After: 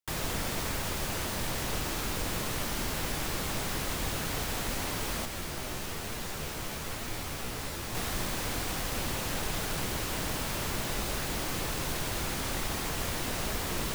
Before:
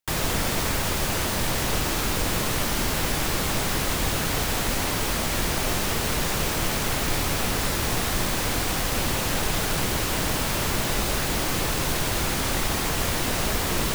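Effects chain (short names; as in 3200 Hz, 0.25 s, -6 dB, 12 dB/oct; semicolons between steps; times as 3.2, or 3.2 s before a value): 5.25–7.95 flange 1.1 Hz, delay 8.2 ms, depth 8.8 ms, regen +44%; gain -8 dB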